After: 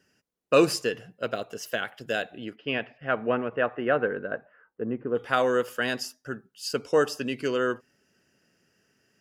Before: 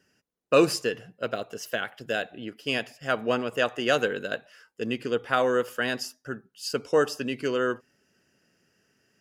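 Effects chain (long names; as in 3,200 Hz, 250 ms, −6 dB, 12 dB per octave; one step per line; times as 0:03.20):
0:02.55–0:05.15: low-pass filter 3,000 Hz → 1,300 Hz 24 dB per octave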